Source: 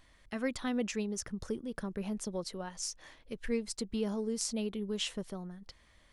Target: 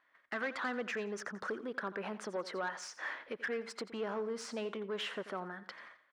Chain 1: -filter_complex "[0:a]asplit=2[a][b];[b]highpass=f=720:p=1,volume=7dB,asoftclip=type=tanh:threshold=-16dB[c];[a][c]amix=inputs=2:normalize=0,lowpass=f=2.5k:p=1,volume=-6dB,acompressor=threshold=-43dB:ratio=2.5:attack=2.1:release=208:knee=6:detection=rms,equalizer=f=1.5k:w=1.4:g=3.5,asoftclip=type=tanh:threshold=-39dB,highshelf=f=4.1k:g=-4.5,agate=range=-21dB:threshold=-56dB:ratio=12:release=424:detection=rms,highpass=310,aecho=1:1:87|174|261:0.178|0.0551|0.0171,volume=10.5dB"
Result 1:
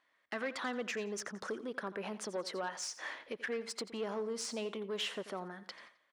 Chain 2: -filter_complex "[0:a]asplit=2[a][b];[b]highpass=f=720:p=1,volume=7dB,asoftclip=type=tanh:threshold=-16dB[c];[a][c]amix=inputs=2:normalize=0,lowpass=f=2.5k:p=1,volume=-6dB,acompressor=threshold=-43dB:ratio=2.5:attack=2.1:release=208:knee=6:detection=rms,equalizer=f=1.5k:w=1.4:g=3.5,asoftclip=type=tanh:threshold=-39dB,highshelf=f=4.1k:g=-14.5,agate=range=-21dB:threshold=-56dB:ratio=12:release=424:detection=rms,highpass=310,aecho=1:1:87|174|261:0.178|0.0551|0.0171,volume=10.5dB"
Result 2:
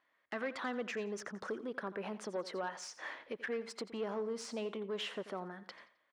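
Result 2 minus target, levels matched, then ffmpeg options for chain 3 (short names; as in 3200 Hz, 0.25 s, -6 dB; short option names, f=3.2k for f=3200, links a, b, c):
2000 Hz band -3.0 dB
-filter_complex "[0:a]asplit=2[a][b];[b]highpass=f=720:p=1,volume=7dB,asoftclip=type=tanh:threshold=-16dB[c];[a][c]amix=inputs=2:normalize=0,lowpass=f=2.5k:p=1,volume=-6dB,acompressor=threshold=-43dB:ratio=2.5:attack=2.1:release=208:knee=6:detection=rms,equalizer=f=1.5k:w=1.4:g=10.5,asoftclip=type=tanh:threshold=-39dB,highshelf=f=4.1k:g=-14.5,agate=range=-21dB:threshold=-56dB:ratio=12:release=424:detection=rms,highpass=310,aecho=1:1:87|174|261:0.178|0.0551|0.0171,volume=10.5dB"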